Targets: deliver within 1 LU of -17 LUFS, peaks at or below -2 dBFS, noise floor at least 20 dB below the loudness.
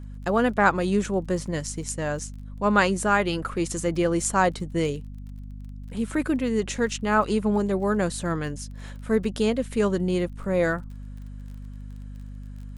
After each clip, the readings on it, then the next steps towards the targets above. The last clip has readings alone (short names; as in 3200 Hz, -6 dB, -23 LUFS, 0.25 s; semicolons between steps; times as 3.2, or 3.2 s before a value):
ticks 27/s; hum 50 Hz; harmonics up to 250 Hz; hum level -35 dBFS; loudness -25.0 LUFS; peak -5.5 dBFS; loudness target -17.0 LUFS
-> de-click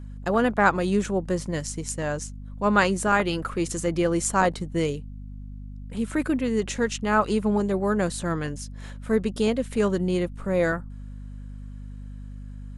ticks 0/s; hum 50 Hz; harmonics up to 250 Hz; hum level -36 dBFS
-> de-hum 50 Hz, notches 5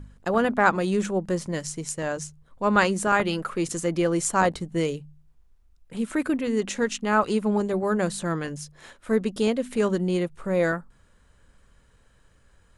hum none; loudness -25.0 LUFS; peak -5.0 dBFS; loudness target -17.0 LUFS
-> gain +8 dB; limiter -2 dBFS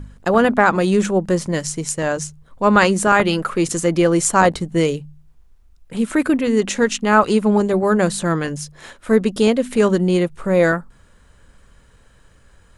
loudness -17.5 LUFS; peak -2.0 dBFS; noise floor -52 dBFS